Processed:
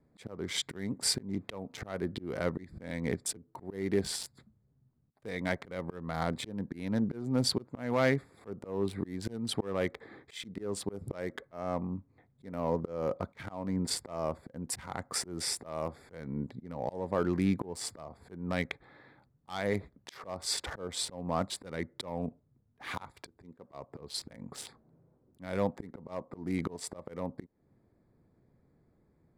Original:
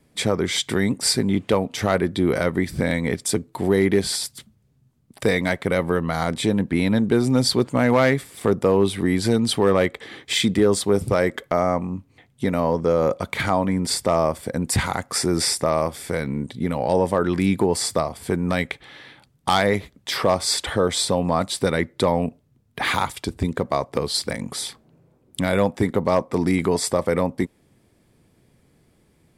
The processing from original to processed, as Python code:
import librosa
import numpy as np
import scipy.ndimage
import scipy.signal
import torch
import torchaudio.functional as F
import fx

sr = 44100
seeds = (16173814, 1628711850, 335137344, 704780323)

y = fx.wiener(x, sr, points=15)
y = fx.low_shelf(y, sr, hz=180.0, db=-10.5, at=(23.22, 23.74))
y = fx.auto_swell(y, sr, attack_ms=314.0)
y = y * 10.0 ** (-8.0 / 20.0)